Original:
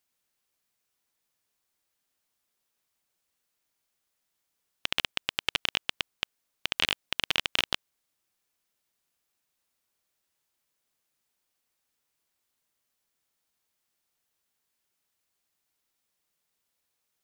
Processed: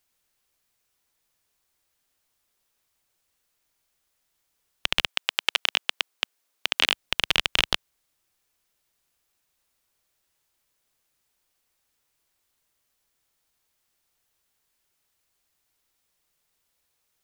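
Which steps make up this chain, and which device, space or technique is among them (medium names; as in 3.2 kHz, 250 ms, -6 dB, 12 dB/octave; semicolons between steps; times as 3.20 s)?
low shelf boost with a cut just above (bass shelf 79 Hz +7.5 dB; peaking EQ 210 Hz -3.5 dB 0.77 oct); 5.05–6.92 s: high-pass 540 Hz -> 210 Hz 12 dB/octave; trim +5 dB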